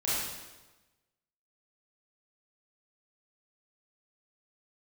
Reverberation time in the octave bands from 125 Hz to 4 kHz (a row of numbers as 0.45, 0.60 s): 1.2, 1.2, 1.2, 1.1, 1.1, 1.0 s